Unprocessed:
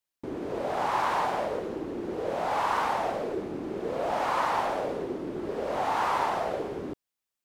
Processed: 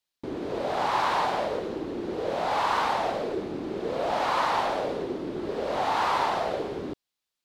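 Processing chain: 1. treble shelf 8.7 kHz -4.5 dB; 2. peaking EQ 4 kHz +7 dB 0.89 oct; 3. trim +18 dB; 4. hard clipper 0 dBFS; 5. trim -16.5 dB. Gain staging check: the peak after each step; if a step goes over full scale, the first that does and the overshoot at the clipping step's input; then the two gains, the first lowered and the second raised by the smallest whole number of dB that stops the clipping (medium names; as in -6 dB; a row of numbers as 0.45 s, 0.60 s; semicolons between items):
-15.0 dBFS, -14.5 dBFS, +3.5 dBFS, 0.0 dBFS, -16.5 dBFS; step 3, 3.5 dB; step 3 +14 dB, step 5 -12.5 dB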